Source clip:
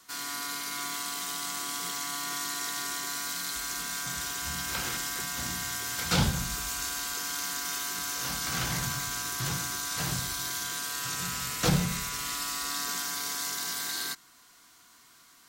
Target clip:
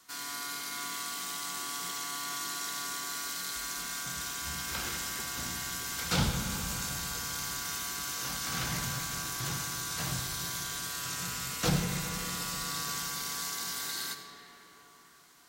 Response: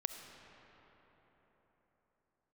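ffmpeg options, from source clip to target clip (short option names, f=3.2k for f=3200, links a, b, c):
-filter_complex "[1:a]atrim=start_sample=2205[a];[0:a][a]afir=irnorm=-1:irlink=0,volume=-2dB"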